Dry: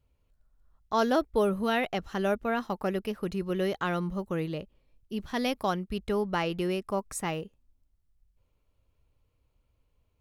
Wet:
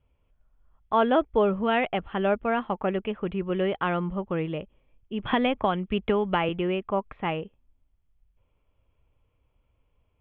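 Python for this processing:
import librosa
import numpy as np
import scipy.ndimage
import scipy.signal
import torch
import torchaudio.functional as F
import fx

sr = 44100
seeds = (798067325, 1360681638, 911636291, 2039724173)

y = scipy.signal.sosfilt(scipy.signal.cheby1(6, 3, 3400.0, 'lowpass', fs=sr, output='sos'), x)
y = fx.band_squash(y, sr, depth_pct=100, at=(5.25, 6.49))
y = y * 10.0 ** (5.0 / 20.0)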